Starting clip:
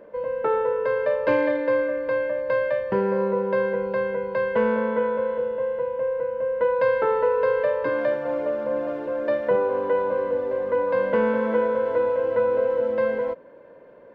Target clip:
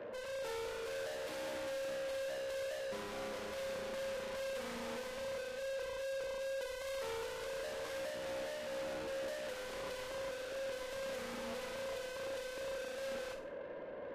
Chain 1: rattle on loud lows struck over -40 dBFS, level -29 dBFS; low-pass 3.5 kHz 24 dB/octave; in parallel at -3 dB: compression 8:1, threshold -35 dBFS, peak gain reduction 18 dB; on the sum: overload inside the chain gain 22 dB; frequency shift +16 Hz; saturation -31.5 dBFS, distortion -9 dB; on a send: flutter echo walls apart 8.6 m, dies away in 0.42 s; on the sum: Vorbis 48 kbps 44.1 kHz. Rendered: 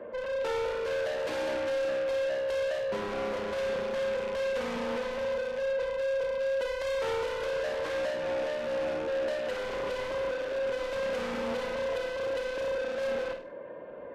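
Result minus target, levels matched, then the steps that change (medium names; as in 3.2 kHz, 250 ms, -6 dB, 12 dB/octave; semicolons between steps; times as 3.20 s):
compression: peak gain reduction +5.5 dB; saturation: distortion -4 dB
change: compression 8:1, threshold -28.5 dBFS, peak gain reduction 12.5 dB; change: saturation -43 dBFS, distortion -5 dB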